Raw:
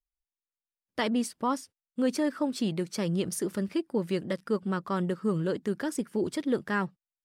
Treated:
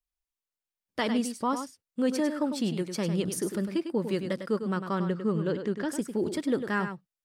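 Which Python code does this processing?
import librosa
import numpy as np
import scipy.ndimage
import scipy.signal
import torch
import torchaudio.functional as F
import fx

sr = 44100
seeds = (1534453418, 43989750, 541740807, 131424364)

y = fx.lowpass(x, sr, hz=5200.0, slope=12, at=(4.95, 5.89))
y = y + 10.0 ** (-8.5 / 20.0) * np.pad(y, (int(101 * sr / 1000.0), 0))[:len(y)]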